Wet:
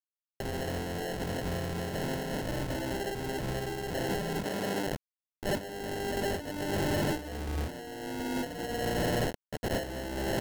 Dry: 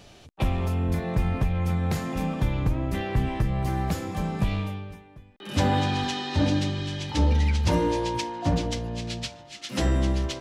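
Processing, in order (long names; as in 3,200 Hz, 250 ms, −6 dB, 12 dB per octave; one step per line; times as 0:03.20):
mains-hum notches 50/100/150/200/250/300 Hz
downward expander −42 dBFS
bit reduction 6 bits
dynamic equaliser 450 Hz, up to +4 dB, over −39 dBFS, Q 2.4
mid-hump overdrive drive 23 dB, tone 1,200 Hz, clips at −10 dBFS
0:08.97–0:09.83: graphic EQ with 15 bands 250 Hz −10 dB, 4,000 Hz −11 dB, 10,000 Hz +11 dB
compressor whose output falls as the input rises −28 dBFS, ratio −0.5
decimation without filtering 37×
soft clipping −26 dBFS, distortion −8 dB
0:04.44–0:04.86: high-pass filter 180 Hz 12 dB per octave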